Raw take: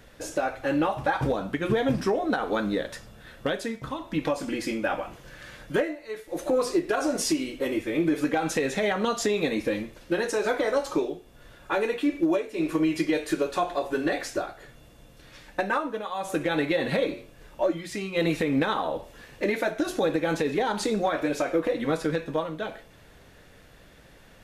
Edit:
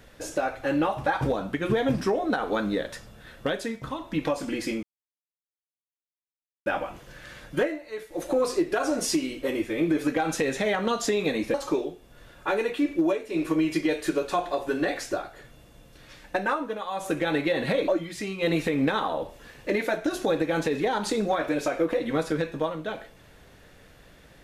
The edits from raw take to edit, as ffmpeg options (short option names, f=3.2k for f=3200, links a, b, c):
-filter_complex "[0:a]asplit=4[a][b][c][d];[a]atrim=end=4.83,asetpts=PTS-STARTPTS,afade=t=out:st=4.826:d=0.004:c=hsin,apad=pad_dur=1.83[e];[b]atrim=start=4.83:end=9.712,asetpts=PTS-STARTPTS,afade=t=in:d=0.004:c=hsin[f];[c]atrim=start=10.778:end=17.122[g];[d]atrim=start=17.618[h];[e][f]concat=n=2:v=0:a=1[i];[i][g]acrossfade=d=0.004:c1=hsin:c2=hsin[j];[j][h]acrossfade=d=0.004:c1=hsin:c2=hsin"